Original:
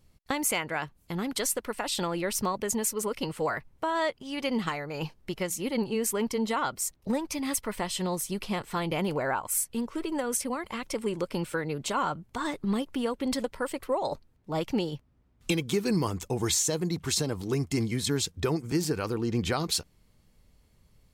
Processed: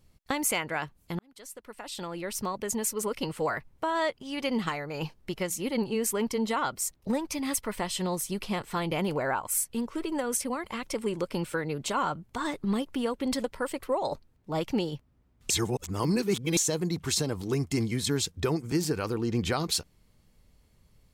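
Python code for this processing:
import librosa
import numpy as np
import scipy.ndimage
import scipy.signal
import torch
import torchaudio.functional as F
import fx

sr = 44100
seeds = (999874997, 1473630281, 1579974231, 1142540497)

y = fx.edit(x, sr, fx.fade_in_span(start_s=1.19, length_s=1.88),
    fx.reverse_span(start_s=15.5, length_s=1.07), tone=tone)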